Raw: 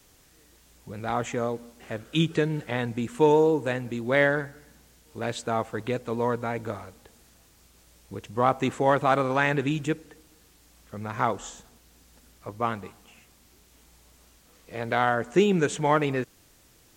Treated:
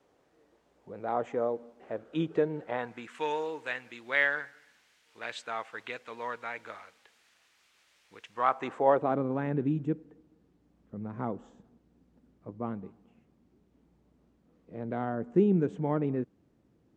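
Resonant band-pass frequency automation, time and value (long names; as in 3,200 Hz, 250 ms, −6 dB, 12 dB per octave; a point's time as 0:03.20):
resonant band-pass, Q 1.1
0:02.61 550 Hz
0:03.17 2,200 Hz
0:08.29 2,200 Hz
0:08.94 550 Hz
0:09.21 220 Hz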